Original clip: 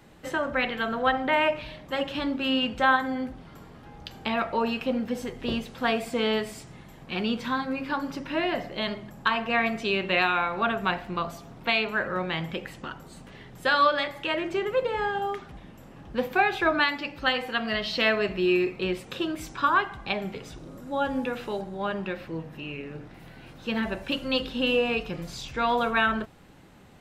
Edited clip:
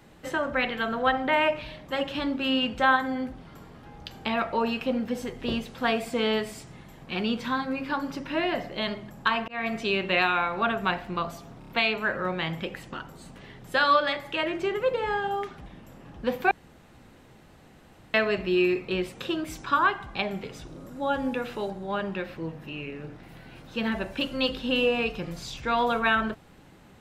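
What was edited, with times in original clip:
0:09.48–0:09.74: fade in
0:11.59: stutter 0.03 s, 4 plays
0:16.42–0:18.05: fill with room tone

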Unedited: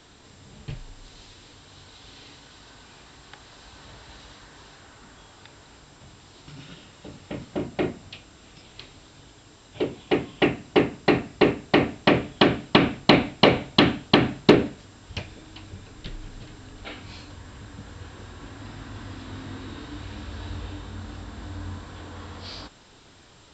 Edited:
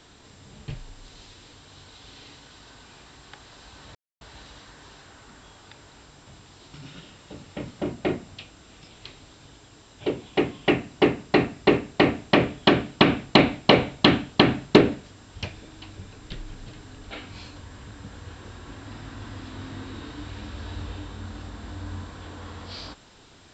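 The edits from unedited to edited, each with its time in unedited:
0:03.95: splice in silence 0.26 s

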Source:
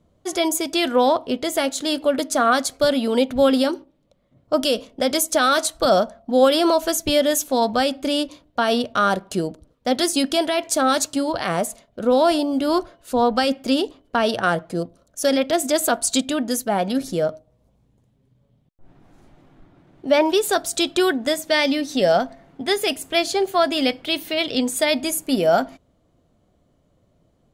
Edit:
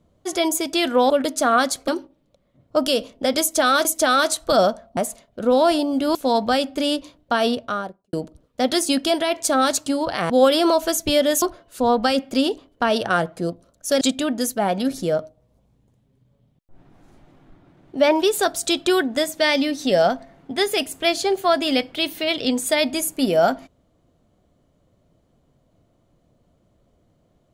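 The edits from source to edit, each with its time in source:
0:01.10–0:02.04: remove
0:02.82–0:03.65: remove
0:05.18–0:05.62: repeat, 2 plays
0:06.30–0:07.42: swap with 0:11.57–0:12.75
0:08.68–0:09.40: fade out and dull
0:15.34–0:16.11: remove

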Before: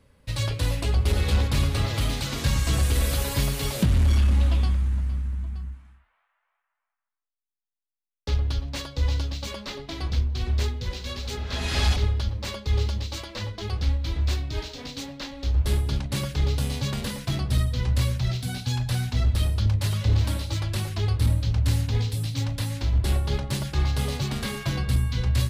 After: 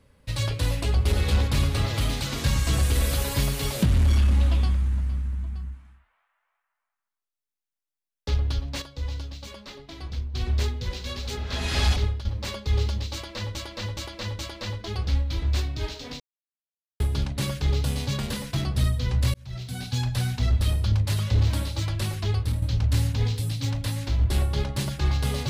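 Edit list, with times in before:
0:08.82–0:10.34: clip gain −7 dB
0:11.92–0:12.25: fade out equal-power, to −12.5 dB
0:13.13–0:13.55: repeat, 4 plays
0:14.94–0:15.74: silence
0:18.08–0:18.68: fade in linear
0:21.04–0:21.36: fade out, to −8.5 dB

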